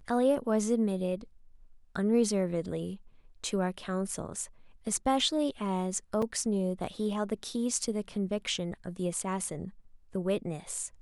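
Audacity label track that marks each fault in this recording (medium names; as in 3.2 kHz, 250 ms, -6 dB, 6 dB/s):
6.220000	6.220000	dropout 4.6 ms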